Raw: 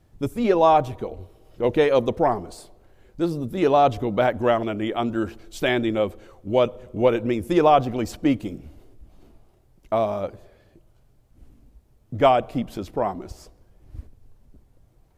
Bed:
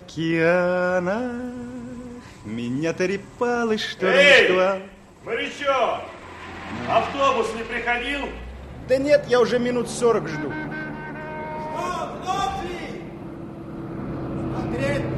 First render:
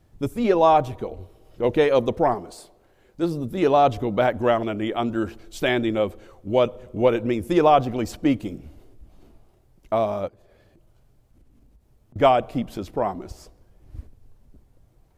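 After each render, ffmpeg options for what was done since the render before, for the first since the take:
ffmpeg -i in.wav -filter_complex "[0:a]asettb=1/sr,asplit=3[link_01][link_02][link_03];[link_01]atrim=end=2.344[link_04];[link_02]atrim=start=2.34:end=3.23,asetpts=PTS-STARTPTS,afade=type=in:duration=0.004:curve=qsin,afade=type=out:start_time=0.886:duration=0.004:curve=qsin,lowshelf=frequency=130:gain=-10.5[link_05];[link_03]atrim=start=3.226[link_06];[link_04][link_05]acrossfade=duration=0.004:curve1=hsin:curve2=qsin[link_07];[link_07][link_06]acrossfade=duration=0.004:curve1=qsin:curve2=hsin,asettb=1/sr,asplit=3[link_08][link_09][link_10];[link_08]atrim=end=10.284[link_11];[link_09]atrim=start=10.28:end=12.16,asetpts=PTS-STARTPTS,afade=type=in:duration=0.004:curve=qsin,afade=type=out:start_time=1.876:duration=0.004:curve=qsin,acompressor=threshold=-50dB:ratio=12:attack=3.2:release=140:knee=1:detection=peak[link_12];[link_10]atrim=start=12.156[link_13];[link_11][link_12]acrossfade=duration=0.004:curve1=hsin:curve2=qsin[link_14];[link_14][link_13]acrossfade=duration=0.004:curve1=qsin:curve2=hsin" out.wav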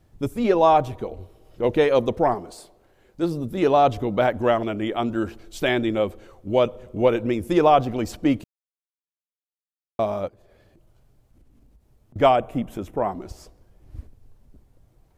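ffmpeg -i in.wav -filter_complex "[0:a]asettb=1/sr,asplit=3[link_01][link_02][link_03];[link_01]atrim=end=12.364[link_04];[link_02]atrim=start=12.36:end=13.12,asetpts=PTS-STARTPTS,afade=type=in:duration=0.004:curve=qsin,afade=type=out:start_time=0.756:duration=0.004:curve=qsin,equalizer=frequency=4500:width_type=o:width=0.51:gain=-14.5[link_05];[link_03]atrim=start=13.116[link_06];[link_04][link_05]acrossfade=duration=0.004:curve1=hsin:curve2=qsin[link_07];[link_07][link_06]acrossfade=duration=0.004:curve1=qsin:curve2=hsin,asplit=3[link_08][link_09][link_10];[link_08]atrim=end=8.44,asetpts=PTS-STARTPTS,afade=type=out:start_time=8.436:duration=0.004:curve=hsin[link_11];[link_09]atrim=start=8.44:end=9.99,asetpts=PTS-STARTPTS,volume=0[link_12];[link_10]atrim=start=9.99,asetpts=PTS-STARTPTS,afade=type=in:duration=0.004:curve=hsin[link_13];[link_11][link_12][link_13]concat=n=3:v=0:a=1" out.wav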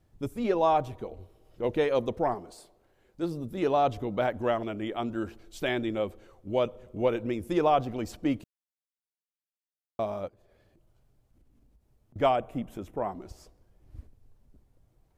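ffmpeg -i in.wav -af "volume=-7.5dB" out.wav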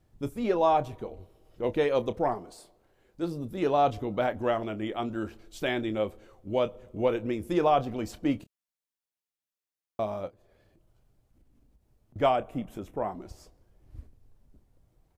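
ffmpeg -i in.wav -filter_complex "[0:a]asplit=2[link_01][link_02];[link_02]adelay=28,volume=-13dB[link_03];[link_01][link_03]amix=inputs=2:normalize=0" out.wav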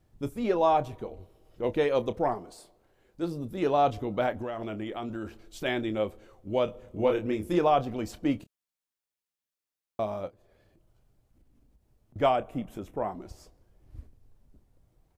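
ffmpeg -i in.wav -filter_complex "[0:a]asplit=3[link_01][link_02][link_03];[link_01]afade=type=out:start_time=4.38:duration=0.02[link_04];[link_02]acompressor=threshold=-30dB:ratio=10:attack=3.2:release=140:knee=1:detection=peak,afade=type=in:start_time=4.38:duration=0.02,afade=type=out:start_time=5.64:duration=0.02[link_05];[link_03]afade=type=in:start_time=5.64:duration=0.02[link_06];[link_04][link_05][link_06]amix=inputs=3:normalize=0,asettb=1/sr,asplit=3[link_07][link_08][link_09];[link_07]atrim=end=6.654[link_10];[link_08]atrim=start=6.65:end=7.59,asetpts=PTS-STARTPTS,afade=type=in:duration=0.004:curve=qsin,afade=type=out:start_time=0.936:duration=0.004:curve=qsin,asplit=2[link_11][link_12];[link_12]adelay=28,volume=-8dB[link_13];[link_11][link_13]amix=inputs=2:normalize=0,atrim=end_sample=41454[link_14];[link_09]atrim=start=7.586[link_15];[link_10][link_14]acrossfade=duration=0.004:curve1=hsin:curve2=qsin[link_16];[link_16][link_15]acrossfade=duration=0.004:curve1=qsin:curve2=hsin" out.wav

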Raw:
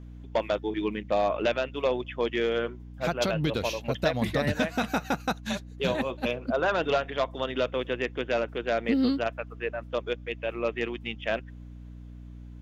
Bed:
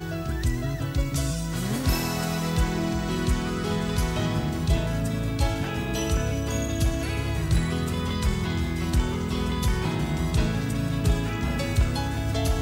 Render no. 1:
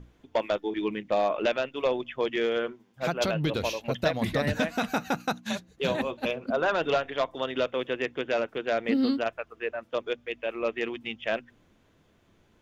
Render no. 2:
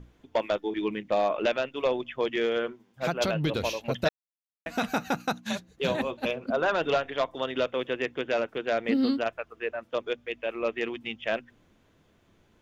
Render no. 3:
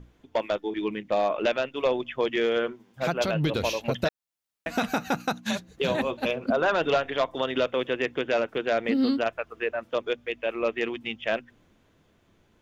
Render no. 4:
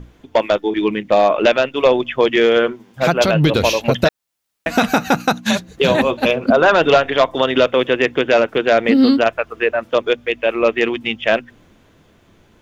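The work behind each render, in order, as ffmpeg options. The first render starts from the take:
ffmpeg -i in.wav -af "bandreject=frequency=60:width_type=h:width=6,bandreject=frequency=120:width_type=h:width=6,bandreject=frequency=180:width_type=h:width=6,bandreject=frequency=240:width_type=h:width=6,bandreject=frequency=300:width_type=h:width=6" out.wav
ffmpeg -i in.wav -filter_complex "[0:a]asplit=3[link_01][link_02][link_03];[link_01]atrim=end=4.09,asetpts=PTS-STARTPTS,afade=type=out:start_time=4.086:duration=0.004:curve=hsin[link_04];[link_02]atrim=start=4.09:end=4.66,asetpts=PTS-STARTPTS,volume=0[link_05];[link_03]atrim=start=4.66,asetpts=PTS-STARTPTS,afade=type=in:duration=0.004:curve=hsin[link_06];[link_04][link_05][link_06]concat=n=3:v=0:a=1" out.wav
ffmpeg -i in.wav -af "dynaudnorm=framelen=320:gausssize=17:maxgain=9dB,alimiter=limit=-15.5dB:level=0:latency=1:release=403" out.wav
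ffmpeg -i in.wav -af "volume=11.5dB" out.wav

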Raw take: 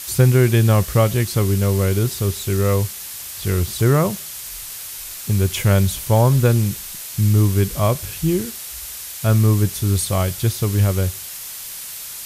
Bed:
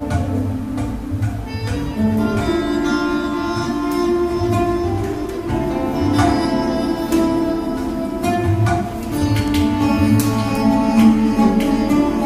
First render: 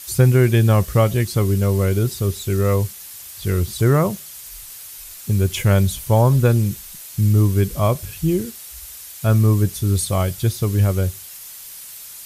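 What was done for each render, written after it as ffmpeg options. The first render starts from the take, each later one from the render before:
ffmpeg -i in.wav -af "afftdn=noise_reduction=7:noise_floor=-33" out.wav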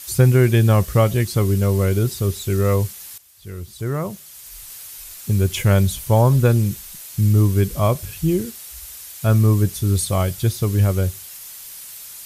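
ffmpeg -i in.wav -filter_complex "[0:a]asplit=2[link_01][link_02];[link_01]atrim=end=3.18,asetpts=PTS-STARTPTS,afade=type=out:start_time=3.176:duration=0.004:curve=hsin:silence=0.177828[link_03];[link_02]atrim=start=3.18,asetpts=PTS-STARTPTS,afade=type=in:duration=1.54:curve=qua:silence=0.177828[link_04];[link_03][link_04]concat=n=2:v=0:a=1" out.wav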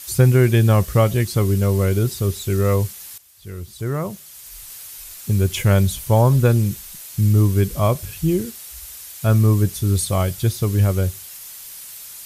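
ffmpeg -i in.wav -af anull out.wav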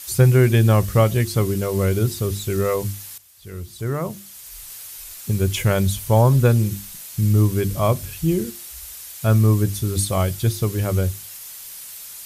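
ffmpeg -i in.wav -af "bandreject=frequency=50:width_type=h:width=6,bandreject=frequency=100:width_type=h:width=6,bandreject=frequency=150:width_type=h:width=6,bandreject=frequency=200:width_type=h:width=6,bandreject=frequency=250:width_type=h:width=6,bandreject=frequency=300:width_type=h:width=6,bandreject=frequency=350:width_type=h:width=6" out.wav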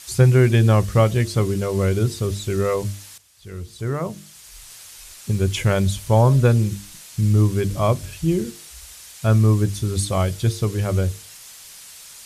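ffmpeg -i in.wav -af "lowpass=8700,bandreject=frequency=152:width_type=h:width=4,bandreject=frequency=304:width_type=h:width=4,bandreject=frequency=456:width_type=h:width=4,bandreject=frequency=608:width_type=h:width=4" out.wav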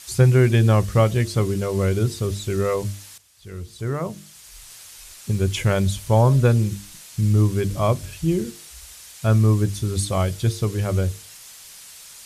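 ffmpeg -i in.wav -af "volume=-1dB" out.wav

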